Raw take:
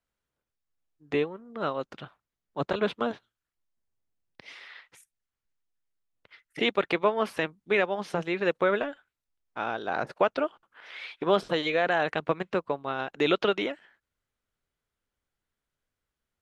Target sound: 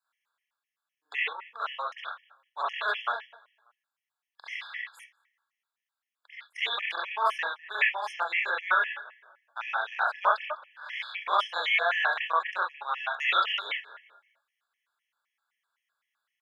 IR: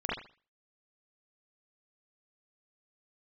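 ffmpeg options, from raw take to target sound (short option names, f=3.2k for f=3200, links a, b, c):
-filter_complex "[0:a]highpass=f=950:w=0.5412,highpass=f=950:w=1.3066,asplit=2[a][b];[b]adelay=202,lowpass=f=2.7k:p=1,volume=-20.5dB,asplit=2[c][d];[d]adelay=202,lowpass=f=2.7k:p=1,volume=0.36,asplit=2[e][f];[f]adelay=202,lowpass=f=2.7k:p=1,volume=0.36[g];[a][c][e][g]amix=inputs=4:normalize=0[h];[1:a]atrim=start_sample=2205,afade=t=out:st=0.16:d=0.01,atrim=end_sample=7497[i];[h][i]afir=irnorm=-1:irlink=0,asplit=2[j][k];[k]acompressor=threshold=-36dB:ratio=6,volume=-3dB[l];[j][l]amix=inputs=2:normalize=0,afftfilt=real='re*gt(sin(2*PI*3.9*pts/sr)*(1-2*mod(floor(b*sr/1024/1700),2)),0)':imag='im*gt(sin(2*PI*3.9*pts/sr)*(1-2*mod(floor(b*sr/1024/1700),2)),0)':win_size=1024:overlap=0.75"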